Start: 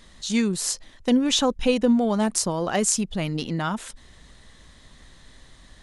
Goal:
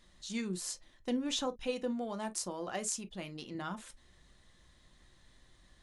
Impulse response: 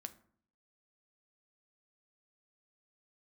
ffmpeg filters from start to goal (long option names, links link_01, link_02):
-filter_complex "[0:a]asettb=1/sr,asplit=3[link_01][link_02][link_03];[link_01]atrim=end=1.464[link_04];[link_02]atrim=start=1.46:end=3.55,asetpts=PTS-STARTPTS,afade=type=in:duration=0.004:curve=qsin,afade=type=out:start_time=2.086:duration=0.004:curve=qsin,lowshelf=frequency=220:gain=-7.5[link_05];[link_03]atrim=start=3.546[link_06];[link_04][link_05]acrossfade=duration=0.004:curve1=hsin:curve2=qsin[link_07];[link_07][link_06]acrossfade=duration=0.004:curve1=qsin:curve2=hsin[link_08];[1:a]atrim=start_sample=2205,atrim=end_sample=3969,asetrate=70560,aresample=44100[link_09];[link_08][link_09]afir=irnorm=-1:irlink=0,volume=-4.5dB"